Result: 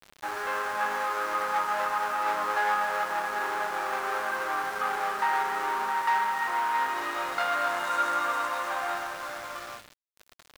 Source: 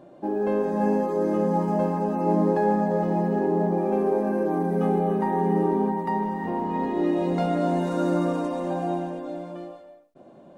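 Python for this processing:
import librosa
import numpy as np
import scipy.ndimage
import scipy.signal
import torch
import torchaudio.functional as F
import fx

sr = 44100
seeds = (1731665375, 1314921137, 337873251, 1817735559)

y = fx.power_curve(x, sr, exponent=0.7)
y = fx.highpass_res(y, sr, hz=1300.0, q=2.8)
y = np.where(np.abs(y) >= 10.0 ** (-39.0 / 20.0), y, 0.0)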